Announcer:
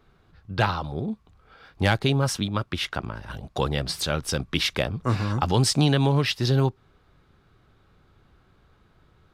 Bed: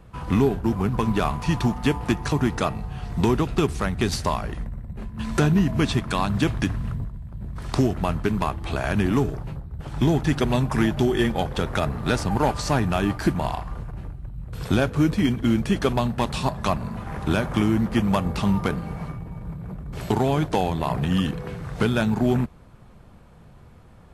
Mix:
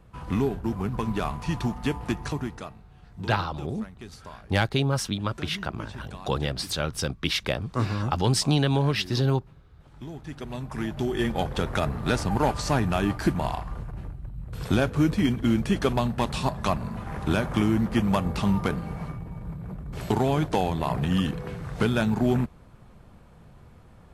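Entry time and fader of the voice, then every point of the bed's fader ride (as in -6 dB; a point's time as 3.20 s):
2.70 s, -2.0 dB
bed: 2.27 s -5.5 dB
2.83 s -19.5 dB
10.06 s -19.5 dB
11.42 s -2 dB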